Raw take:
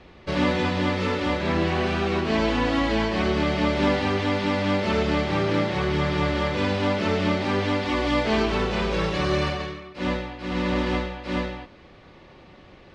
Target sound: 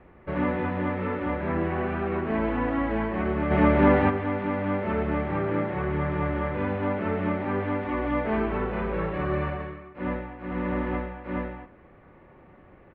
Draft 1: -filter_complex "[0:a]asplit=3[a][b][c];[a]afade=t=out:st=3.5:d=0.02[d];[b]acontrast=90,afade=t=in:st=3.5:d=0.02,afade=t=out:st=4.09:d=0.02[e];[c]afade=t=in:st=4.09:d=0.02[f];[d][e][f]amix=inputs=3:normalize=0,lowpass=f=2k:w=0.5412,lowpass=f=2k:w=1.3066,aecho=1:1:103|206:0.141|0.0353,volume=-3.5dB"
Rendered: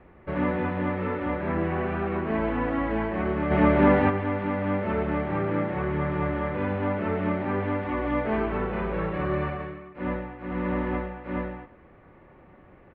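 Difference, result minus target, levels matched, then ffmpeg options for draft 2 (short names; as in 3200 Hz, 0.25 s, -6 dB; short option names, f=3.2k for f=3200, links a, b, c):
echo 34 ms late
-filter_complex "[0:a]asplit=3[a][b][c];[a]afade=t=out:st=3.5:d=0.02[d];[b]acontrast=90,afade=t=in:st=3.5:d=0.02,afade=t=out:st=4.09:d=0.02[e];[c]afade=t=in:st=4.09:d=0.02[f];[d][e][f]amix=inputs=3:normalize=0,lowpass=f=2k:w=0.5412,lowpass=f=2k:w=1.3066,aecho=1:1:69|138:0.141|0.0353,volume=-3.5dB"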